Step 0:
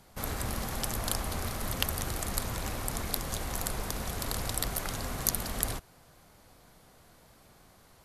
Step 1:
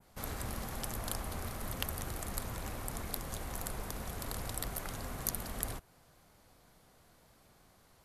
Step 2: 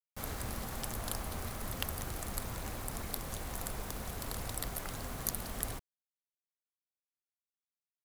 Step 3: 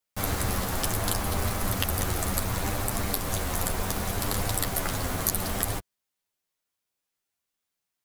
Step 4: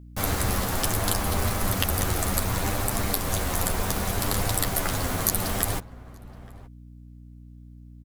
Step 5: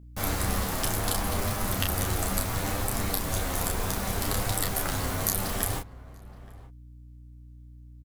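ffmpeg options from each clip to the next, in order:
ffmpeg -i in.wav -af "adynamicequalizer=threshold=0.00355:dfrequency=4800:dqfactor=0.72:tfrequency=4800:tqfactor=0.72:attack=5:release=100:ratio=0.375:range=2:mode=cutabove:tftype=bell,volume=-5.5dB" out.wav
ffmpeg -i in.wav -af "acrusher=bits=7:mix=0:aa=0.000001" out.wav
ffmpeg -i in.wav -filter_complex "[0:a]asplit=2[link_01][link_02];[link_02]alimiter=limit=-19.5dB:level=0:latency=1:release=152,volume=0dB[link_03];[link_01][link_03]amix=inputs=2:normalize=0,flanger=delay=9.9:depth=1.1:regen=-5:speed=0.69:shape=triangular,volume=9dB" out.wav
ffmpeg -i in.wav -filter_complex "[0:a]aeval=exprs='val(0)+0.00501*(sin(2*PI*60*n/s)+sin(2*PI*2*60*n/s)/2+sin(2*PI*3*60*n/s)/3+sin(2*PI*4*60*n/s)/4+sin(2*PI*5*60*n/s)/5)':channel_layout=same,asplit=2[link_01][link_02];[link_02]adelay=874.6,volume=-19dB,highshelf=frequency=4000:gain=-19.7[link_03];[link_01][link_03]amix=inputs=2:normalize=0,volume=2.5dB" out.wav
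ffmpeg -i in.wav -filter_complex "[0:a]asplit=2[link_01][link_02];[link_02]adelay=31,volume=-4.5dB[link_03];[link_01][link_03]amix=inputs=2:normalize=0,volume=-4dB" out.wav

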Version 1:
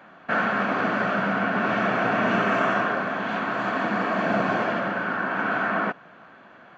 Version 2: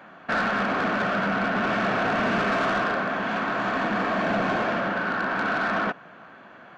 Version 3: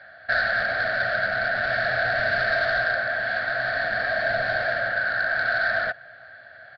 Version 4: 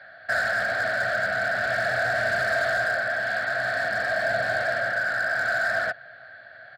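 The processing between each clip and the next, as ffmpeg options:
ffmpeg -i in.wav -af "asoftclip=type=tanh:threshold=-21dB,volume=2dB" out.wav
ffmpeg -i in.wav -af "firequalizer=gain_entry='entry(120,0);entry(170,-21);entry(390,-21);entry(650,1);entry(1000,-25);entry(1600,6);entry(2600,-13);entry(4400,8);entry(6400,-23)':delay=0.05:min_phase=1,volume=3dB" out.wav
ffmpeg -i in.wav -filter_complex "[0:a]highpass=84,acrossover=split=260|1600[link_01][link_02][link_03];[link_03]asoftclip=type=hard:threshold=-30.5dB[link_04];[link_01][link_02][link_04]amix=inputs=3:normalize=0" out.wav

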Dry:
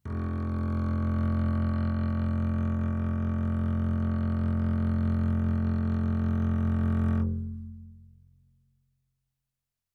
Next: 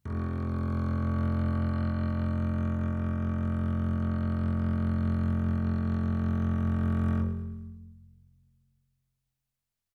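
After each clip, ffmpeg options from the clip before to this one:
ffmpeg -i in.wav -af "aecho=1:1:108|216|324|432|540:0.266|0.128|0.0613|0.0294|0.0141" out.wav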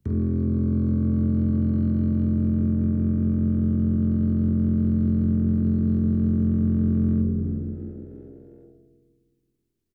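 ffmpeg -i in.wav -filter_complex "[0:a]lowshelf=frequency=560:width_type=q:width=1.5:gain=10.5,asplit=5[link_01][link_02][link_03][link_04][link_05];[link_02]adelay=357,afreqshift=63,volume=-18dB[link_06];[link_03]adelay=714,afreqshift=126,volume=-23.8dB[link_07];[link_04]adelay=1071,afreqshift=189,volume=-29.7dB[link_08];[link_05]adelay=1428,afreqshift=252,volume=-35.5dB[link_09];[link_01][link_06][link_07][link_08][link_09]amix=inputs=5:normalize=0,acrossover=split=150|420[link_10][link_11][link_12];[link_10]acompressor=threshold=-26dB:ratio=4[link_13];[link_11]acompressor=threshold=-21dB:ratio=4[link_14];[link_12]acompressor=threshold=-50dB:ratio=4[link_15];[link_13][link_14][link_15]amix=inputs=3:normalize=0" out.wav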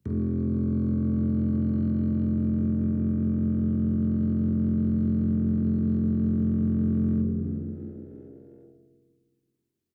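ffmpeg -i in.wav -af "highpass=93,volume=-2dB" out.wav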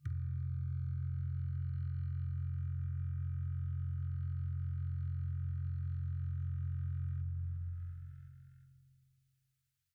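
ffmpeg -i in.wav -af "afftfilt=real='re*(1-between(b*sr/4096,140,1200))':imag='im*(1-between(b*sr/4096,140,1200))':win_size=4096:overlap=0.75,acompressor=threshold=-40dB:ratio=3,volume=1.5dB" out.wav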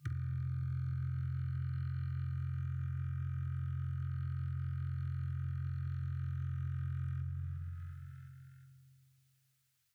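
ffmpeg -i in.wav -af "highpass=160,volume=8.5dB" out.wav

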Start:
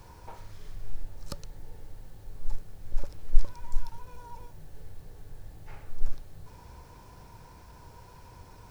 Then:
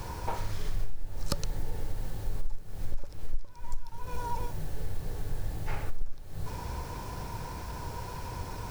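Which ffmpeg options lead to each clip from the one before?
ffmpeg -i in.wav -af "acompressor=threshold=-34dB:ratio=12,volume=12dB" out.wav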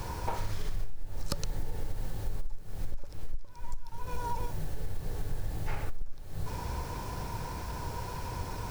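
ffmpeg -i in.wav -af "acompressor=threshold=-26dB:ratio=5,volume=1dB" out.wav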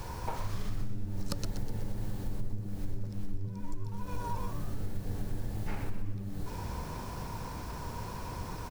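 ffmpeg -i in.wav -filter_complex "[0:a]asplit=7[link_01][link_02][link_03][link_04][link_05][link_06][link_07];[link_02]adelay=124,afreqshift=95,volume=-10dB[link_08];[link_03]adelay=248,afreqshift=190,volume=-15.8dB[link_09];[link_04]adelay=372,afreqshift=285,volume=-21.7dB[link_10];[link_05]adelay=496,afreqshift=380,volume=-27.5dB[link_11];[link_06]adelay=620,afreqshift=475,volume=-33.4dB[link_12];[link_07]adelay=744,afreqshift=570,volume=-39.2dB[link_13];[link_01][link_08][link_09][link_10][link_11][link_12][link_13]amix=inputs=7:normalize=0,volume=-3dB" out.wav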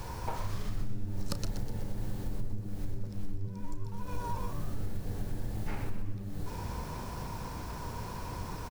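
ffmpeg -i in.wav -filter_complex "[0:a]asplit=2[link_01][link_02];[link_02]adelay=33,volume=-13.5dB[link_03];[link_01][link_03]amix=inputs=2:normalize=0" out.wav

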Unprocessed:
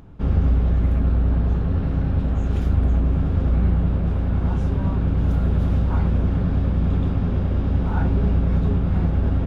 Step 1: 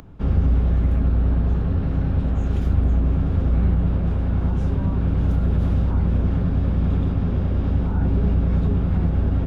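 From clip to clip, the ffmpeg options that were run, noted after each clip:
ffmpeg -i in.wav -filter_complex "[0:a]acrossover=split=280|450[link_01][link_02][link_03];[link_03]alimiter=level_in=8dB:limit=-24dB:level=0:latency=1:release=88,volume=-8dB[link_04];[link_01][link_02][link_04]amix=inputs=3:normalize=0,acompressor=mode=upward:threshold=-41dB:ratio=2.5" out.wav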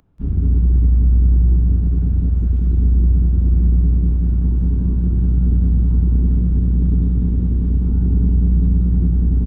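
ffmpeg -i in.wav -af "aecho=1:1:183|366|549|732|915|1098|1281:0.631|0.347|0.191|0.105|0.0577|0.0318|0.0175,afwtdn=0.2" out.wav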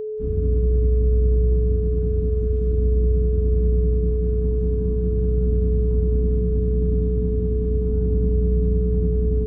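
ffmpeg -i in.wav -af "aeval=exprs='val(0)+0.1*sin(2*PI*430*n/s)':channel_layout=same,volume=-5.5dB" out.wav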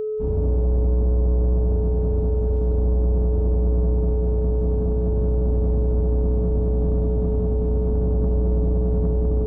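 ffmpeg -i in.wav -af "asoftclip=type=tanh:threshold=-18dB,volume=3dB" out.wav

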